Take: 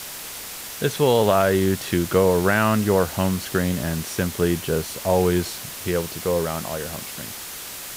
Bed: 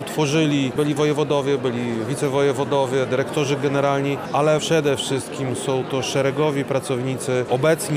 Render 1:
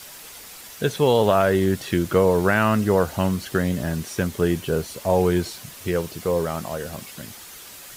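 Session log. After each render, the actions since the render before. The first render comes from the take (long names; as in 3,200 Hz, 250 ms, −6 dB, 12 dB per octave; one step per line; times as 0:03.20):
broadband denoise 8 dB, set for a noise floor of −35 dBFS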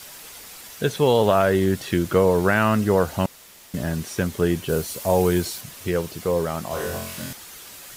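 0:03.26–0:03.74: fill with room tone
0:04.69–0:05.61: high-shelf EQ 6,600 Hz +8.5 dB
0:06.68–0:07.33: flutter between parallel walls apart 3.9 metres, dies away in 0.66 s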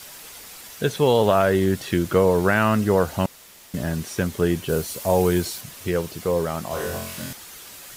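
no processing that can be heard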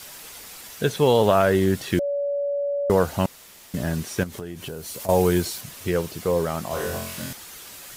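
0:01.99–0:02.90: beep over 569 Hz −22 dBFS
0:04.23–0:05.09: downward compressor 8 to 1, threshold −30 dBFS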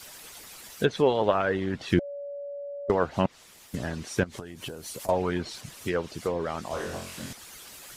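treble cut that deepens with the level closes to 2,900 Hz, closed at −17 dBFS
harmonic and percussive parts rebalanced harmonic −12 dB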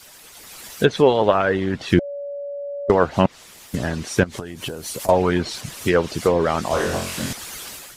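automatic gain control gain up to 12 dB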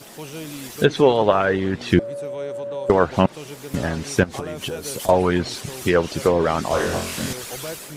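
mix in bed −16 dB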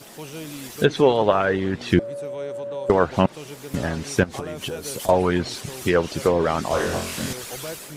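level −1.5 dB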